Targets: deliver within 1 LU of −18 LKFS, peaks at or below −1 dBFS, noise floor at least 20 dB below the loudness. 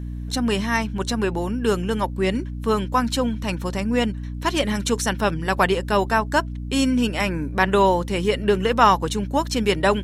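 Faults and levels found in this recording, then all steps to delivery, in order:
mains hum 60 Hz; hum harmonics up to 300 Hz; level of the hum −28 dBFS; integrated loudness −22.0 LKFS; sample peak −2.5 dBFS; target loudness −18.0 LKFS
→ hum removal 60 Hz, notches 5
level +4 dB
brickwall limiter −1 dBFS

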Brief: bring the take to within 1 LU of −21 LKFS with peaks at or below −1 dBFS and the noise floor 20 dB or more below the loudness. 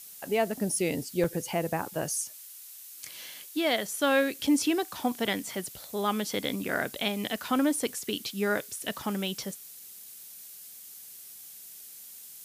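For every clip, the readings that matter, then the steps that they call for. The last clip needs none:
number of dropouts 2; longest dropout 3.8 ms; background noise floor −47 dBFS; target noise floor −50 dBFS; integrated loudness −30.0 LKFS; sample peak −14.5 dBFS; target loudness −21.0 LKFS
→ repair the gap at 0:01.24/0:04.47, 3.8 ms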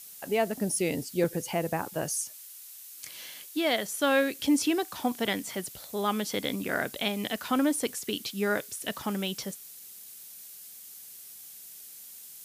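number of dropouts 0; background noise floor −47 dBFS; target noise floor −50 dBFS
→ broadband denoise 6 dB, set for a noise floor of −47 dBFS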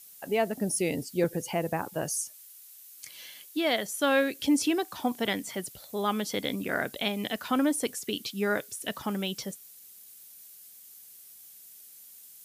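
background noise floor −51 dBFS; integrated loudness −30.0 LKFS; sample peak −14.0 dBFS; target loudness −21.0 LKFS
→ level +9 dB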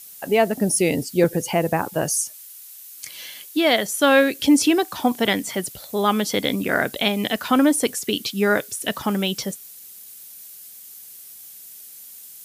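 integrated loudness −21.0 LKFS; sample peak −5.0 dBFS; background noise floor −42 dBFS

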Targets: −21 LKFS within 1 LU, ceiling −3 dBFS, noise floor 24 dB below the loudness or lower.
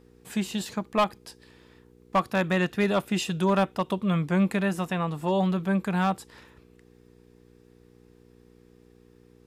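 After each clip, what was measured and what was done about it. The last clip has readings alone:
share of clipped samples 0.3%; peaks flattened at −16.0 dBFS; mains hum 60 Hz; hum harmonics up to 480 Hz; level of the hum −55 dBFS; integrated loudness −26.5 LKFS; sample peak −16.0 dBFS; target loudness −21.0 LKFS
→ clipped peaks rebuilt −16 dBFS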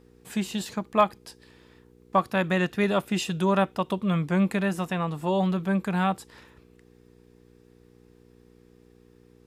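share of clipped samples 0.0%; mains hum 60 Hz; hum harmonics up to 480 Hz; level of the hum −55 dBFS
→ hum removal 60 Hz, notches 8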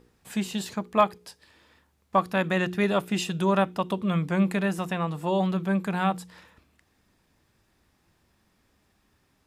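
mains hum none found; integrated loudness −26.5 LKFS; sample peak −7.0 dBFS; target loudness −21.0 LKFS
→ level +5.5 dB
brickwall limiter −3 dBFS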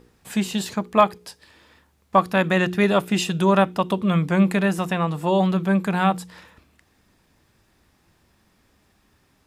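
integrated loudness −21.0 LKFS; sample peak −3.0 dBFS; background noise floor −63 dBFS

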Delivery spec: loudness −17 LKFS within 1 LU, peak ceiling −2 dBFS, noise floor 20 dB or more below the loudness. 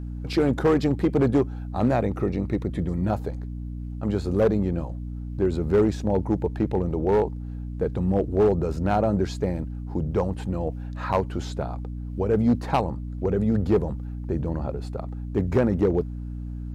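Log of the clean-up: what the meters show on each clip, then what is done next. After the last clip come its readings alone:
share of clipped samples 0.6%; peaks flattened at −13.5 dBFS; mains hum 60 Hz; hum harmonics up to 300 Hz; level of the hum −30 dBFS; integrated loudness −25.5 LKFS; sample peak −13.5 dBFS; target loudness −17.0 LKFS
→ clipped peaks rebuilt −13.5 dBFS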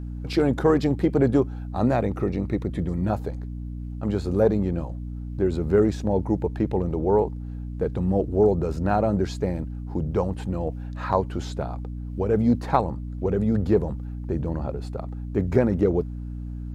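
share of clipped samples 0.0%; mains hum 60 Hz; hum harmonics up to 300 Hz; level of the hum −30 dBFS
→ mains-hum notches 60/120/180/240/300 Hz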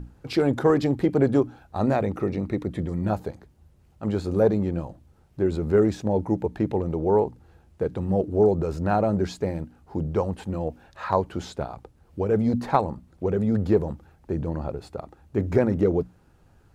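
mains hum none found; integrated loudness −25.0 LKFS; sample peak −5.0 dBFS; target loudness −17.0 LKFS
→ level +8 dB
brickwall limiter −2 dBFS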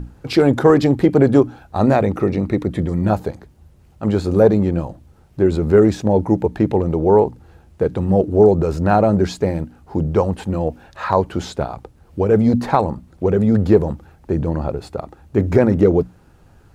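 integrated loudness −17.5 LKFS; sample peak −2.0 dBFS; background noise floor −50 dBFS

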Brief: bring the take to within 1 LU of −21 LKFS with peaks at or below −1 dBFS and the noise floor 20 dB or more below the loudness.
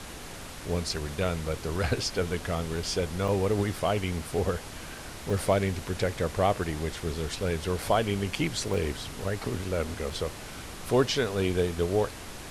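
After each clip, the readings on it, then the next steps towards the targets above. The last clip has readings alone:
number of dropouts 5; longest dropout 3.7 ms; background noise floor −42 dBFS; target noise floor −50 dBFS; integrated loudness −29.5 LKFS; sample peak −11.0 dBFS; target loudness −21.0 LKFS
→ repair the gap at 0:03.28/0:05.30/0:07.82/0:08.74/0:10.10, 3.7 ms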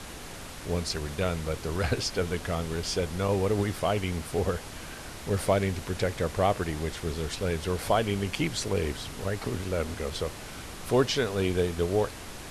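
number of dropouts 0; background noise floor −42 dBFS; target noise floor −50 dBFS
→ noise reduction from a noise print 8 dB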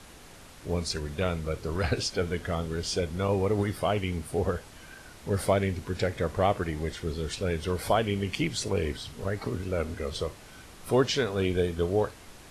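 background noise floor −49 dBFS; target noise floor −50 dBFS
→ noise reduction from a noise print 6 dB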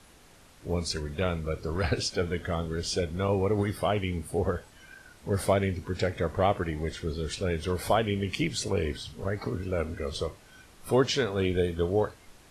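background noise floor −55 dBFS; integrated loudness −29.5 LKFS; sample peak −11.0 dBFS; target loudness −21.0 LKFS
→ level +8.5 dB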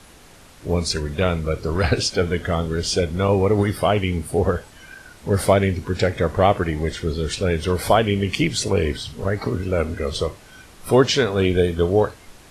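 integrated loudness −21.0 LKFS; sample peak −2.5 dBFS; background noise floor −47 dBFS

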